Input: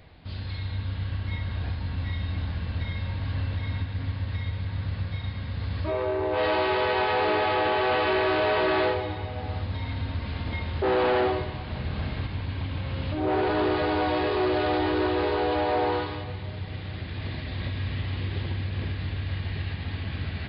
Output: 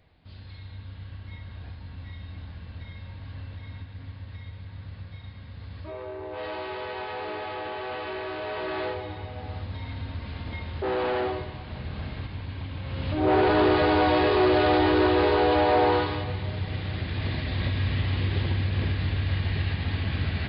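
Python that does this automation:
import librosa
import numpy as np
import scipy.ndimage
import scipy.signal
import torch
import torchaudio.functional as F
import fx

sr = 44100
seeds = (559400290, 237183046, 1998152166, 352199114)

y = fx.gain(x, sr, db=fx.line((8.39, -10.0), (9.19, -4.0), (12.79, -4.0), (13.29, 4.0)))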